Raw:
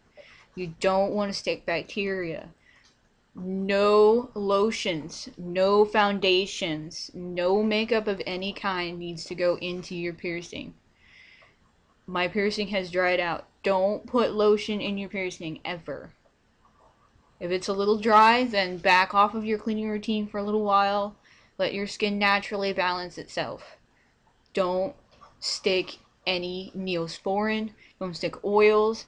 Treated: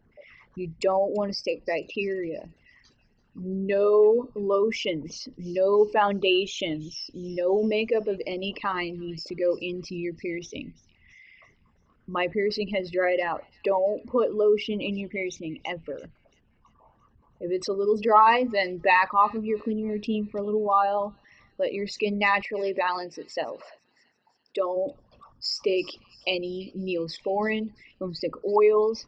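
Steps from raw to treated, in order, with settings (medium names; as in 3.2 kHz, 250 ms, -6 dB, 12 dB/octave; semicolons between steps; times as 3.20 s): resonances exaggerated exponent 2; 22.61–24.75 s: high-pass 160 Hz -> 420 Hz 12 dB/octave; feedback echo behind a high-pass 336 ms, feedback 47%, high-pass 4 kHz, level -17.5 dB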